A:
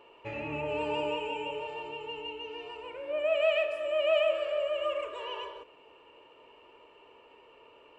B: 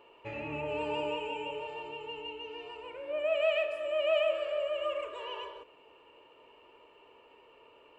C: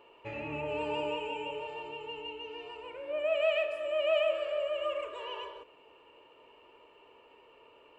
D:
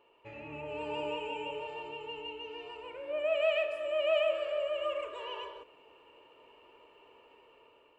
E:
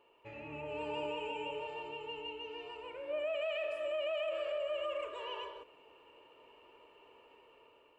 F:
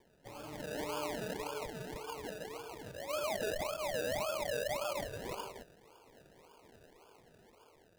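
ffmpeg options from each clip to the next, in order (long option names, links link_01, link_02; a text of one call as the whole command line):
ffmpeg -i in.wav -af "equalizer=frequency=5700:width=6.8:gain=-3,volume=-2dB" out.wav
ffmpeg -i in.wav -af anull out.wav
ffmpeg -i in.wav -af "dynaudnorm=framelen=360:gausssize=5:maxgain=7dB,volume=-7.5dB" out.wav
ffmpeg -i in.wav -af "alimiter=level_in=4.5dB:limit=-24dB:level=0:latency=1:release=34,volume=-4.5dB,volume=-1.5dB" out.wav
ffmpeg -i in.wav -af "acrusher=samples=32:mix=1:aa=0.000001:lfo=1:lforange=19.2:lforate=1.8" out.wav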